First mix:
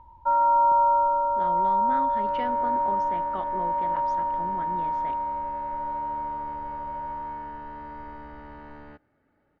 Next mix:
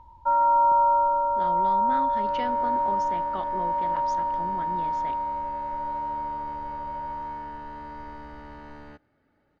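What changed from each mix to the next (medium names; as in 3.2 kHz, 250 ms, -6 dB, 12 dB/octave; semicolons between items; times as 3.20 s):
master: add tone controls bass +1 dB, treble +14 dB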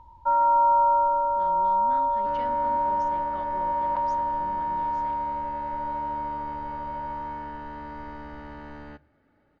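speech -9.0 dB; second sound: add distance through air 85 m; reverb: on, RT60 0.40 s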